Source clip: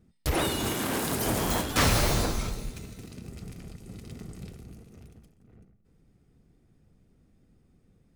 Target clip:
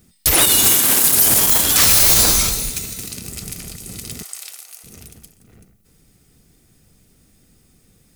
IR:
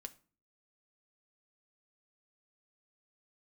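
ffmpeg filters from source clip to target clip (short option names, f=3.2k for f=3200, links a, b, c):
-filter_complex "[0:a]crystalizer=i=8:c=0,asettb=1/sr,asplit=3[a][b][c];[a]atrim=end=4.234[d];[b]atrim=start=4.23:end=4.84,asetpts=PTS-STARTPTS,afade=t=in:d=0.004:c=qsin,afade=t=out:st=0.606:d=0.004:c=qsin,highpass=f=730:w=0.5412,highpass=f=730:w=1.3066[e];[c]atrim=start=4.836[f];[d][e]acrossfade=d=0.004:c1=hsin:c2=qsin[g];[g][f]acrossfade=d=0.004:c1=qsin:c2=hsin,alimiter=level_in=7dB:limit=-1dB:release=50:level=0:latency=1,volume=-1dB"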